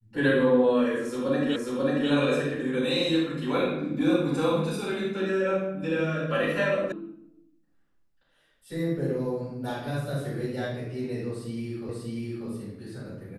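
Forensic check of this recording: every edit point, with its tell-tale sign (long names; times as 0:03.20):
0:01.56: the same again, the last 0.54 s
0:06.92: cut off before it has died away
0:11.89: the same again, the last 0.59 s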